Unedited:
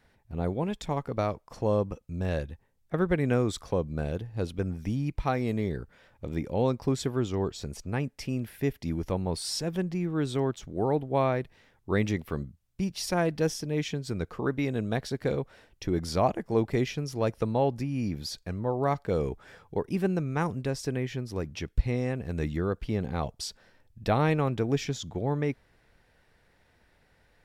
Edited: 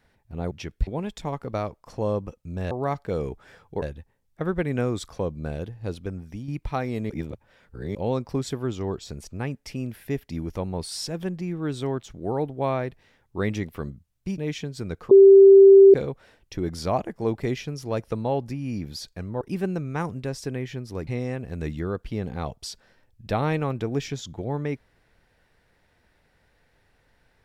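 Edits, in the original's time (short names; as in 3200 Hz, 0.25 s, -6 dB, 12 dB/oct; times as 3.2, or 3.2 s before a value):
4.39–5.01 fade out, to -7.5 dB
5.63–6.48 reverse
12.91–13.68 cut
14.41–15.24 bleep 391 Hz -7 dBFS
18.71–19.82 move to 2.35
21.48–21.84 move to 0.51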